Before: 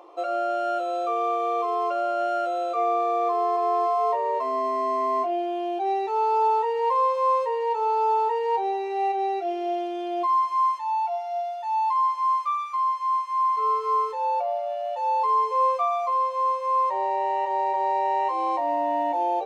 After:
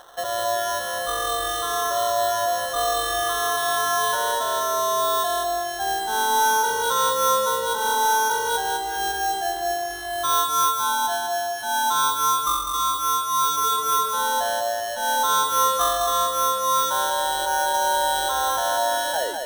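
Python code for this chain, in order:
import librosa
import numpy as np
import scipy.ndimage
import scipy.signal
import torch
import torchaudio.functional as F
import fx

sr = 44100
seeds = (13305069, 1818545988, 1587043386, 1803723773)

p1 = fx.tape_stop_end(x, sr, length_s=0.32)
p2 = scipy.signal.sosfilt(scipy.signal.butter(4, 550.0, 'highpass', fs=sr, output='sos'), p1)
p3 = fx.sample_hold(p2, sr, seeds[0], rate_hz=2400.0, jitter_pct=0)
p4 = fx.dynamic_eq(p3, sr, hz=2100.0, q=0.7, threshold_db=-36.0, ratio=4.0, max_db=-5)
p5 = p4 + fx.echo_feedback(p4, sr, ms=201, feedback_pct=40, wet_db=-5, dry=0)
y = p5 * 10.0 ** (3.0 / 20.0)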